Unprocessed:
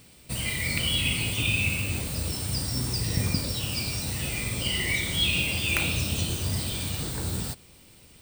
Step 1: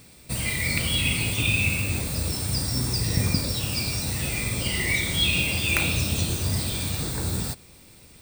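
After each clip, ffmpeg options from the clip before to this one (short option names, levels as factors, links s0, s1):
-af "bandreject=f=3000:w=8.9,volume=1.41"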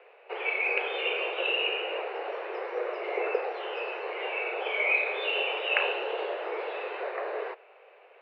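-af "highpass=f=210:t=q:w=0.5412,highpass=f=210:t=q:w=1.307,lowpass=f=2300:t=q:w=0.5176,lowpass=f=2300:t=q:w=0.7071,lowpass=f=2300:t=q:w=1.932,afreqshift=240,volume=1.33"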